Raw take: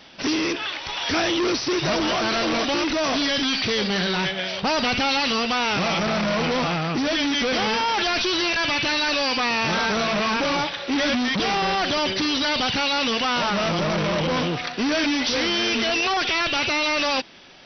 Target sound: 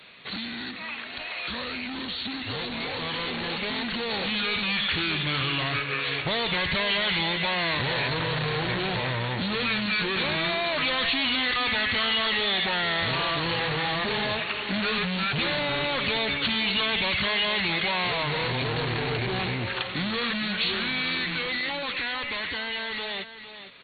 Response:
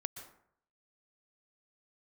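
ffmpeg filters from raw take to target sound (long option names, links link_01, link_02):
-filter_complex "[0:a]lowshelf=frequency=86:gain=-6.5,acrossover=split=150[link_01][link_02];[link_02]acompressor=threshold=-34dB:ratio=2[link_03];[link_01][link_03]amix=inputs=2:normalize=0,highshelf=frequency=3000:gain=11,aecho=1:1:340:0.282,asetrate=32667,aresample=44100,dynaudnorm=framelen=580:gausssize=13:maxgain=7dB,volume=-7dB"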